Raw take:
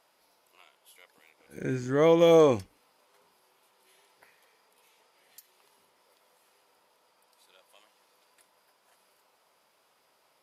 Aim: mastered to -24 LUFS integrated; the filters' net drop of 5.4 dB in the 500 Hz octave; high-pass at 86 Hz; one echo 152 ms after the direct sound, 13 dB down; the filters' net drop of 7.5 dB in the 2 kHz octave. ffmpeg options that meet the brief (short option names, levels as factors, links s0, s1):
-af "highpass=86,equalizer=f=500:t=o:g=-5.5,equalizer=f=2000:t=o:g=-9,aecho=1:1:152:0.224,volume=1.5"